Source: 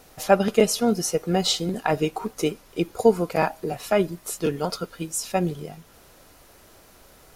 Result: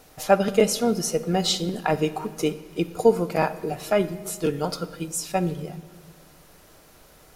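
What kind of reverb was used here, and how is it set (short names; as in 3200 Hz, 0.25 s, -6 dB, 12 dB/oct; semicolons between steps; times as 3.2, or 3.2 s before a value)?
shoebox room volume 1900 m³, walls mixed, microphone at 0.47 m; gain -1 dB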